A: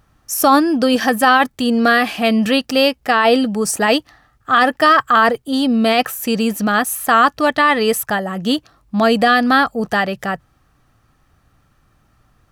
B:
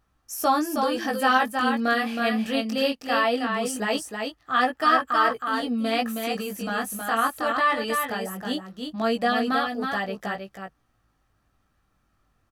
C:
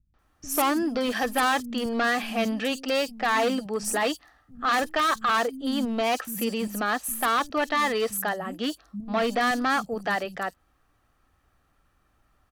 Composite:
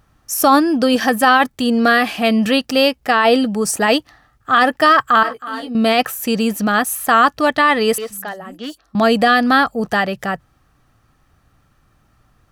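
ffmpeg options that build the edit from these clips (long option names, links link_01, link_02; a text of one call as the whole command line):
ffmpeg -i take0.wav -i take1.wav -i take2.wav -filter_complex "[0:a]asplit=3[link_01][link_02][link_03];[link_01]atrim=end=5.232[link_04];[1:a]atrim=start=5.228:end=5.752[link_05];[link_02]atrim=start=5.748:end=7.982[link_06];[2:a]atrim=start=7.978:end=8.952[link_07];[link_03]atrim=start=8.948[link_08];[link_04][link_05]acrossfade=duration=0.004:curve1=hsin:curve2=hsin[link_09];[link_09][link_06]acrossfade=duration=0.004:curve1=hsin:curve2=hsin[link_10];[link_10][link_07]acrossfade=duration=0.004:curve1=hsin:curve2=hsin[link_11];[link_11][link_08]acrossfade=duration=0.004:curve1=hsin:curve2=hsin" out.wav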